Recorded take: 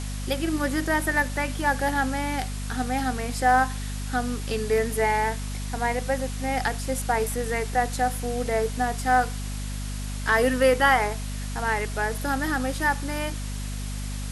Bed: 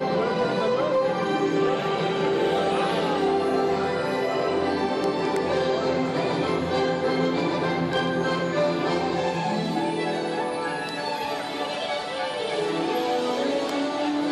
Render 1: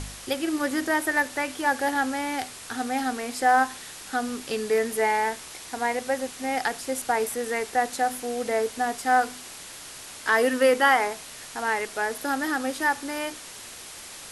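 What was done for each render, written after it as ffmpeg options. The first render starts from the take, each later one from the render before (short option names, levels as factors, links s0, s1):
-af "bandreject=f=50:t=h:w=4,bandreject=f=100:t=h:w=4,bandreject=f=150:t=h:w=4,bandreject=f=200:t=h:w=4,bandreject=f=250:t=h:w=4"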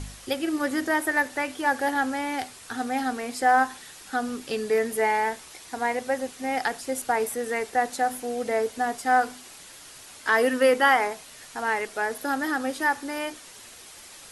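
-af "afftdn=nr=6:nf=-42"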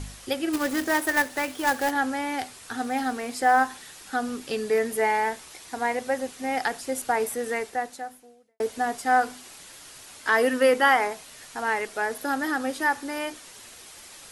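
-filter_complex "[0:a]asplit=3[s0][s1][s2];[s0]afade=t=out:st=0.52:d=0.02[s3];[s1]acrusher=bits=2:mode=log:mix=0:aa=0.000001,afade=t=in:st=0.52:d=0.02,afade=t=out:st=1.9:d=0.02[s4];[s2]afade=t=in:st=1.9:d=0.02[s5];[s3][s4][s5]amix=inputs=3:normalize=0,asettb=1/sr,asplit=3[s6][s7][s8];[s6]atrim=end=2.844[s9];[s7]atrim=start=2.84:end=3.98,asetpts=PTS-STARTPTS,afade=t=in:d=0.004:c=qsin,afade=t=out:st=1.136:d=0.004:c=qsin,acrusher=bits=9:mode=log:mix=0:aa=0.000001[s10];[s8]atrim=start=3.976[s11];[s9][s10]acrossfade=d=0.004:c1=hsin:c2=qsin[s12];[s12][s11]acrossfade=d=0.004:c1=qsin:c2=hsin,asplit=2[s13][s14];[s13]atrim=end=8.6,asetpts=PTS-STARTPTS,afade=t=out:st=7.53:d=1.07:c=qua[s15];[s14]atrim=start=8.6,asetpts=PTS-STARTPTS,afade=t=in:d=0.004:c=hsin[s16];[s15][s16]concat=n=2:v=0:a=1"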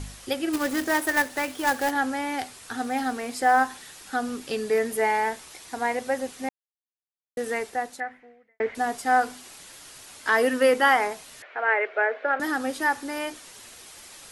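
-filter_complex "[0:a]asettb=1/sr,asplit=3[s0][s1][s2];[s0]atrim=end=8.004[s3];[s1]atrim=start=8:end=8.75,asetpts=PTS-STARTPTS,afade=t=in:d=0.004:c=qsin,afade=t=out:st=0.746:d=0.004:c=qsin,lowpass=f=2000:t=q:w=6.3[s4];[s2]atrim=start=8.746[s5];[s3][s4]acrossfade=d=0.004:c1=hsin:c2=qsin[s6];[s6][s5]acrossfade=d=0.004:c1=qsin:c2=hsin,asettb=1/sr,asplit=3[s7][s8][s9];[s7]atrim=end=11.424[s10];[s8]atrim=start=11.42:end=12.4,asetpts=PTS-STARTPTS,afade=t=in:d=0.004:c=qsin,afade=t=out:st=0.976:d=0.004:c=qsin,highpass=f=390:w=0.5412,highpass=f=390:w=1.3066,equalizer=f=390:t=q:w=4:g=5,equalizer=f=600:t=q:w=4:g=9,equalizer=f=960:t=q:w=4:g=-3,equalizer=f=1500:t=q:w=4:g=6,equalizer=f=2200:t=q:w=4:g=7,lowpass=f=2700:w=0.5412,lowpass=f=2700:w=1.3066[s11];[s9]atrim=start=12.396[s12];[s10][s11]acrossfade=d=0.004:c1=hsin:c2=qsin[s13];[s13][s12]acrossfade=d=0.004:c1=qsin:c2=hsin,asplit=3[s14][s15][s16];[s14]atrim=end=6.49,asetpts=PTS-STARTPTS,afade=t=out:st=6.486:d=0.004:c=hsin[s17];[s15]atrim=start=6.49:end=7.37,asetpts=PTS-STARTPTS,volume=0[s18];[s16]atrim=start=7.37,asetpts=PTS-STARTPTS,afade=t=in:d=0.004:c=hsin[s19];[s17][s18][s19]concat=n=3:v=0:a=1"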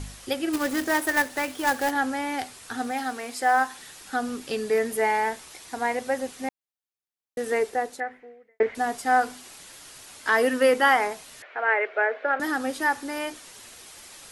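-filter_complex "[0:a]asettb=1/sr,asplit=3[s0][s1][s2];[s0]atrim=end=2.914[s3];[s1]atrim=start=2.91:end=3.78,asetpts=PTS-STARTPTS,afade=t=in:d=0.004:c=qsin,afade=t=out:st=0.866:d=0.004:c=qsin,lowshelf=f=370:g=-8[s4];[s2]atrim=start=3.776[s5];[s3][s4]acrossfade=d=0.004:c1=hsin:c2=qsin[s6];[s6][s5]acrossfade=d=0.004:c1=qsin:c2=hsin,asettb=1/sr,asplit=3[s7][s8][s9];[s7]atrim=end=7.524[s10];[s8]atrim=start=7.52:end=8.63,asetpts=PTS-STARTPTS,afade=t=in:d=0.004:c=qsin,afade=t=out:st=1.106:d=0.004:c=qsin,equalizer=f=430:w=2.3:g=8.5[s11];[s9]atrim=start=8.626[s12];[s10][s11]acrossfade=d=0.004:c1=hsin:c2=qsin[s13];[s13][s12]acrossfade=d=0.004:c1=qsin:c2=hsin"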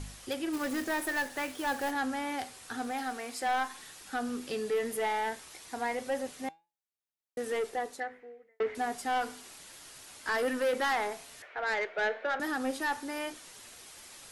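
-af "asoftclip=type=tanh:threshold=0.0891,flanger=delay=5.8:depth=9.4:regen=87:speed=0.15:shape=triangular"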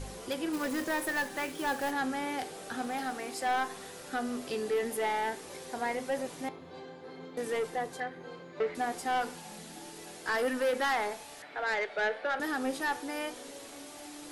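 -filter_complex "[1:a]volume=0.0708[s0];[0:a][s0]amix=inputs=2:normalize=0"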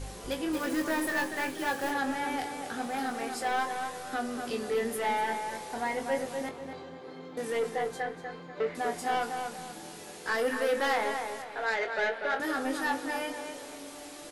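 -filter_complex "[0:a]asplit=2[s0][s1];[s1]adelay=22,volume=0.473[s2];[s0][s2]amix=inputs=2:normalize=0,asplit=2[s3][s4];[s4]adelay=243,lowpass=f=2900:p=1,volume=0.531,asplit=2[s5][s6];[s6]adelay=243,lowpass=f=2900:p=1,volume=0.38,asplit=2[s7][s8];[s8]adelay=243,lowpass=f=2900:p=1,volume=0.38,asplit=2[s9][s10];[s10]adelay=243,lowpass=f=2900:p=1,volume=0.38,asplit=2[s11][s12];[s12]adelay=243,lowpass=f=2900:p=1,volume=0.38[s13];[s3][s5][s7][s9][s11][s13]amix=inputs=6:normalize=0"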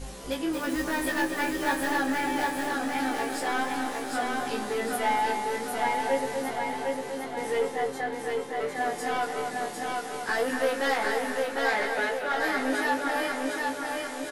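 -filter_complex "[0:a]asplit=2[s0][s1];[s1]adelay=15,volume=0.708[s2];[s0][s2]amix=inputs=2:normalize=0,aecho=1:1:754|1508|2262|3016|3770|4524|5278:0.708|0.361|0.184|0.0939|0.0479|0.0244|0.0125"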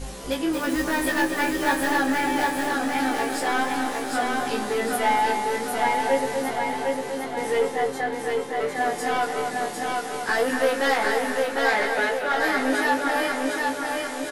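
-af "volume=1.68"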